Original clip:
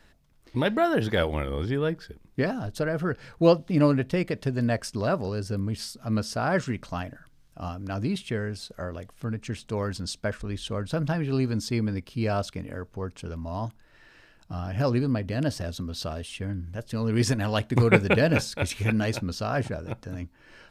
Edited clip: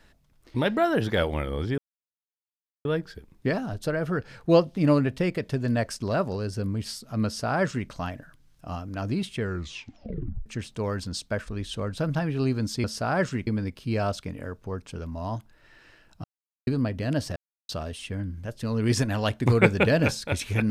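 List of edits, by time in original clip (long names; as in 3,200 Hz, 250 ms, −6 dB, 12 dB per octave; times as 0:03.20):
0:01.78: splice in silence 1.07 s
0:06.19–0:06.82: duplicate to 0:11.77
0:08.34: tape stop 1.05 s
0:14.54–0:14.97: silence
0:15.66–0:15.99: silence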